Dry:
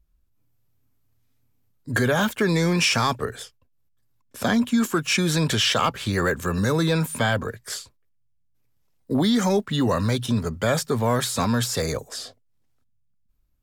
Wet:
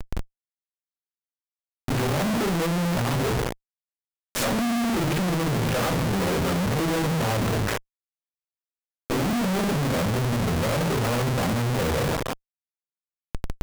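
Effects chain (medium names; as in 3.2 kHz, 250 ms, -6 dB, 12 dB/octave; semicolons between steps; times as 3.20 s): reverse; compression 12:1, threshold -28 dBFS, peak gain reduction 12.5 dB; reverse; low-pass that closes with the level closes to 710 Hz, closed at -31 dBFS; simulated room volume 130 m³, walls furnished, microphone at 4.2 m; Schmitt trigger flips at -48 dBFS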